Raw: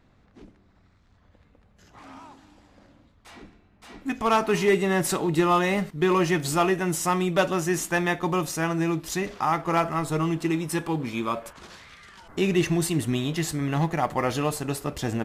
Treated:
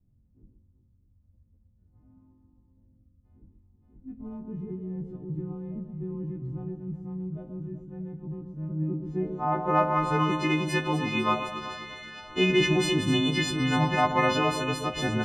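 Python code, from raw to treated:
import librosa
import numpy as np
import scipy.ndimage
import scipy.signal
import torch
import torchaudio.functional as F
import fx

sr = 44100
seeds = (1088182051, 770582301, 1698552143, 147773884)

y = fx.freq_snap(x, sr, grid_st=3)
y = fx.filter_sweep_lowpass(y, sr, from_hz=130.0, to_hz=2900.0, start_s=8.59, end_s=10.3, q=0.9)
y = fx.echo_alternate(y, sr, ms=126, hz=1200.0, feedback_pct=72, wet_db=-7.0)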